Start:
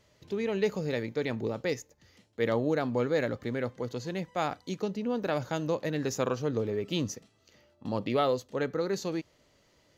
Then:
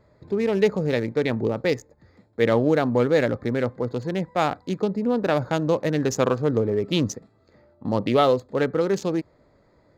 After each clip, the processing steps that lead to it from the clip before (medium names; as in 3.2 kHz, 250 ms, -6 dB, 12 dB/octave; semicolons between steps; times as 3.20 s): local Wiener filter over 15 samples; trim +8.5 dB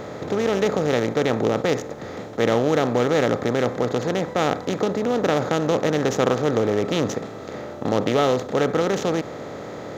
spectral levelling over time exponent 0.4; trim -4.5 dB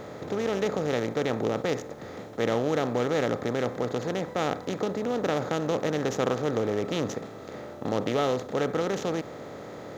bit crusher 10-bit; trim -6.5 dB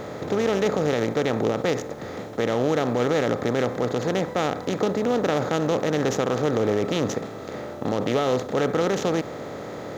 peak limiter -18.5 dBFS, peak gain reduction 6.5 dB; trim +6 dB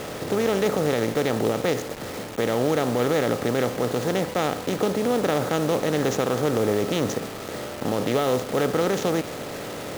bit crusher 6-bit